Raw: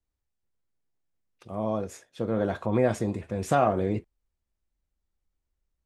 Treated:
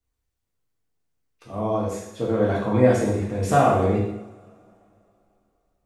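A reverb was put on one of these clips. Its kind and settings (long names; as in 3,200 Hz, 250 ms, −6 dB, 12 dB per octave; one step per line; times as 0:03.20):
coupled-rooms reverb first 0.81 s, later 3.2 s, from −26 dB, DRR −4.5 dB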